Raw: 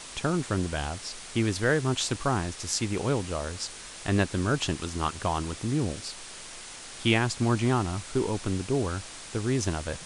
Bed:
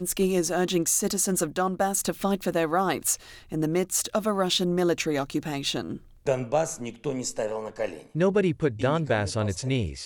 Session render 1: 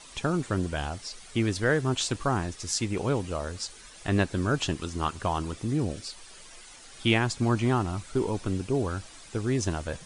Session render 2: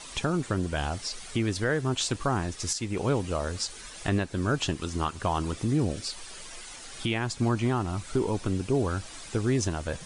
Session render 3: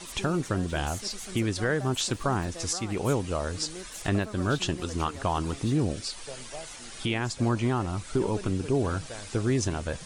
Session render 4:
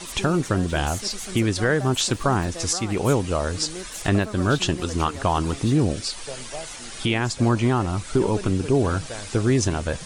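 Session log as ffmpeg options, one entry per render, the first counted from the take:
-af "afftdn=nr=10:nf=-43"
-filter_complex "[0:a]asplit=2[a][b];[b]acompressor=threshold=-35dB:ratio=6,volume=-1.5dB[c];[a][c]amix=inputs=2:normalize=0,alimiter=limit=-15.5dB:level=0:latency=1:release=413"
-filter_complex "[1:a]volume=-17.5dB[a];[0:a][a]amix=inputs=2:normalize=0"
-af "volume=6dB"

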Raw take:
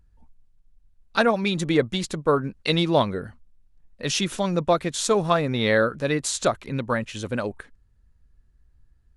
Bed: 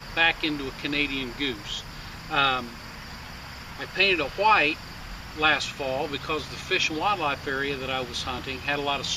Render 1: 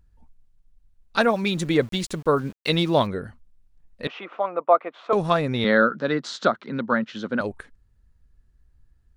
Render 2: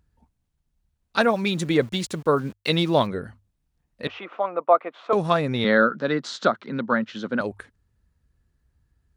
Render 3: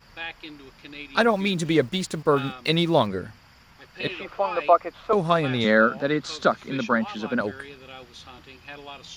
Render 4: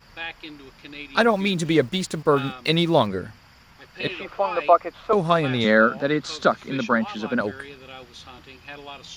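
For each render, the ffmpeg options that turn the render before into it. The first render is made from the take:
-filter_complex "[0:a]asettb=1/sr,asplit=3[a][b][c];[a]atrim=end=1.204[d];[b]atrim=start=1.2:end=3.07,asetpts=PTS-STARTPTS,afade=t=in:d=0.004:c=qsin,afade=t=out:st=1.866:d=0.004:c=qsin,aeval=exprs='val(0)*gte(abs(val(0)),0.0075)':c=same[e];[c]atrim=start=3.066[f];[d][e]acrossfade=d=0.004:c1=hsin:c2=qsin[g];[g][f]acrossfade=d=0.004:c1=qsin:c2=hsin,asettb=1/sr,asplit=3[h][i][j];[h]atrim=end=4.074[k];[i]atrim=start=4.07:end=5.13,asetpts=PTS-STARTPTS,afade=t=in:d=0.004:c=qsin,afade=t=out:st=1.056:d=0.004:c=qsin,highpass=f=360:w=0.5412,highpass=f=360:w=1.3066,equalizer=f=380:t=q:w=4:g=-7,equalizer=f=710:t=q:w=4:g=6,equalizer=f=1.2k:t=q:w=4:g=8,equalizer=f=1.7k:t=q:w=4:g=-8,lowpass=f=2.1k:w=0.5412,lowpass=f=2.1k:w=1.3066[l];[j]atrim=start=5.126[m];[k][l]acrossfade=d=0.004:c1=hsin:c2=qsin[n];[n][m]acrossfade=d=0.004:c1=qsin:c2=hsin,asettb=1/sr,asplit=3[o][p][q];[o]atrim=end=5.644[r];[p]atrim=start=5.64:end=7.41,asetpts=PTS-STARTPTS,afade=t=in:d=0.004:c=qsin,afade=t=out:st=1.766:d=0.004:c=qsin,highpass=f=160:w=0.5412,highpass=f=160:w=1.3066,equalizer=f=220:t=q:w=4:g=6,equalizer=f=1.4k:t=q:w=4:g=8,equalizer=f=2.5k:t=q:w=4:g=-8,lowpass=f=4.7k:w=0.5412,lowpass=f=4.7k:w=1.3066[s];[q]atrim=start=7.406[t];[r][s]acrossfade=d=0.004:c1=hsin:c2=qsin[u];[u][t]acrossfade=d=0.004:c1=qsin:c2=hsin"
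-af "highpass=60,bandreject=f=50:t=h:w=6,bandreject=f=100:t=h:w=6"
-filter_complex "[1:a]volume=-13.5dB[a];[0:a][a]amix=inputs=2:normalize=0"
-af "volume=1.5dB"

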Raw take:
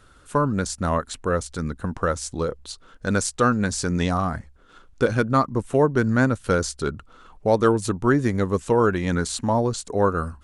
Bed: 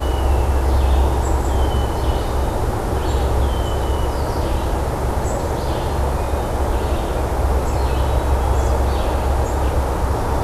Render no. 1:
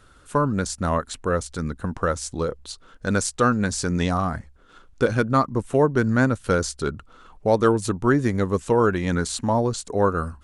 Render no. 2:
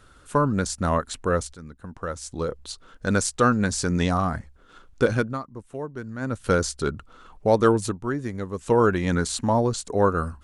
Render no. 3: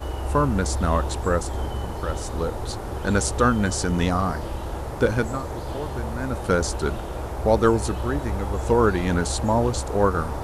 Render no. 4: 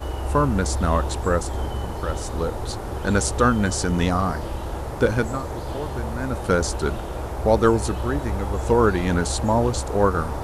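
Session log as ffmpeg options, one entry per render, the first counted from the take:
-af anull
-filter_complex "[0:a]asplit=6[a][b][c][d][e][f];[a]atrim=end=1.54,asetpts=PTS-STARTPTS,afade=t=out:st=1.536:d=0.004:c=hsin:silence=0.199526[g];[b]atrim=start=1.54:end=5.39,asetpts=PTS-STARTPTS,afade=t=in:d=1.07:c=qua:silence=0.199526,afade=t=out:st=3.59:d=0.26:silence=0.188365[h];[c]atrim=start=5.39:end=6.2,asetpts=PTS-STARTPTS,volume=-14.5dB[i];[d]atrim=start=6.2:end=7.97,asetpts=PTS-STARTPTS,afade=t=in:d=0.26:silence=0.188365,afade=t=out:st=1.63:d=0.14:silence=0.375837[j];[e]atrim=start=7.97:end=8.58,asetpts=PTS-STARTPTS,volume=-8.5dB[k];[f]atrim=start=8.58,asetpts=PTS-STARTPTS,afade=t=in:d=0.14:silence=0.375837[l];[g][h][i][j][k][l]concat=n=6:v=0:a=1"
-filter_complex "[1:a]volume=-10.5dB[a];[0:a][a]amix=inputs=2:normalize=0"
-af "volume=1dB"

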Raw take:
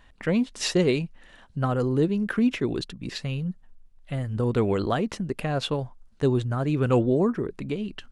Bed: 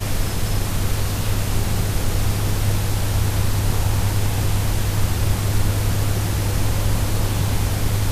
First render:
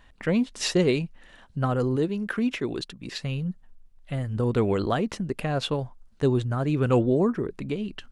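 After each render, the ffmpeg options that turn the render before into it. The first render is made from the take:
-filter_complex "[0:a]asettb=1/sr,asplit=3[a][b][c];[a]atrim=end=1.964[d];[b]atrim=start=1.96:end=3.23,asetpts=PTS-STARTPTS,afade=t=in:d=0.004:c=qsin,afade=t=out:st=1.266:d=0.004:c=qsin,lowshelf=f=270:g=-6.5[e];[c]atrim=start=3.226[f];[d][e]acrossfade=d=0.004:c1=hsin:c2=qsin[g];[g][f]acrossfade=d=0.004:c1=qsin:c2=hsin"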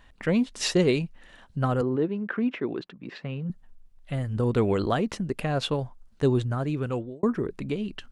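-filter_complex "[0:a]asettb=1/sr,asplit=3[a][b][c];[a]atrim=end=1.814[d];[b]atrim=start=1.81:end=3.5,asetpts=PTS-STARTPTS,afade=t=in:d=0.004:c=qsin,afade=t=out:st=1.686:d=0.004:c=qsin,highpass=160,lowpass=2.1k[e];[c]atrim=start=3.496[f];[d][e]acrossfade=d=0.004:c1=hsin:c2=qsin[g];[g][f]acrossfade=d=0.004:c1=qsin:c2=hsin,asplit=2[h][i];[h]atrim=end=7.23,asetpts=PTS-STARTPTS,afade=t=out:st=6.45:d=0.78[j];[i]atrim=start=7.23,asetpts=PTS-STARTPTS,afade=t=in:d=0.004:c=hsin[k];[j][k]concat=n=2:v=0:a=1"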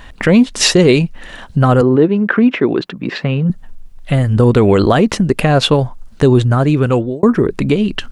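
-filter_complex "[0:a]asplit=2[a][b];[b]acompressor=threshold=-33dB:ratio=6,volume=1dB[c];[a][c]amix=inputs=2:normalize=0,alimiter=level_in=12.5dB:limit=-1dB:release=50:level=0:latency=1"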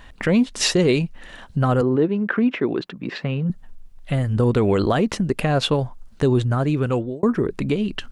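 -af "volume=-8dB"

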